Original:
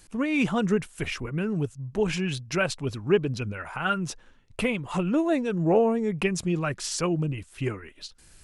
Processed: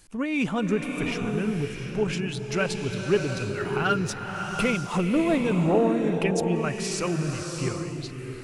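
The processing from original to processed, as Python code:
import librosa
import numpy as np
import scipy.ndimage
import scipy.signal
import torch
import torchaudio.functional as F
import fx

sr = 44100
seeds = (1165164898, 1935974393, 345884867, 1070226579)

y = fx.leveller(x, sr, passes=1, at=(3.57, 5.67))
y = fx.rev_bloom(y, sr, seeds[0], attack_ms=700, drr_db=3.5)
y = y * 10.0 ** (-1.5 / 20.0)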